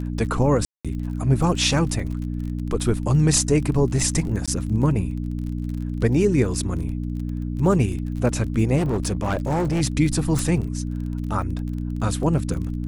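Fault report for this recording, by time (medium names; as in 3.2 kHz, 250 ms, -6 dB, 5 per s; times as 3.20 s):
crackle 33 per s -31 dBFS
hum 60 Hz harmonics 5 -27 dBFS
0.65–0.85 s: dropout 196 ms
4.46–4.48 s: dropout 16 ms
8.77–9.82 s: clipped -18.5 dBFS
10.39 s: pop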